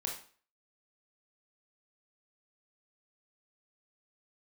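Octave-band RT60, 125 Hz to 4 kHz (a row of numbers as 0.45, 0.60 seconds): 0.40, 0.45, 0.45, 0.45, 0.40, 0.40 seconds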